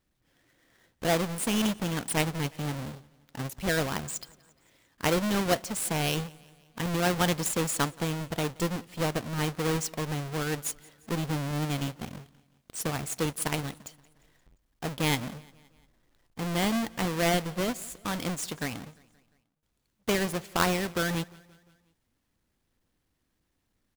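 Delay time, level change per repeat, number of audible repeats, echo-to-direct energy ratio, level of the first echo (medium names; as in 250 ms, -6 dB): 175 ms, -5.0 dB, 3, -22.5 dB, -24.0 dB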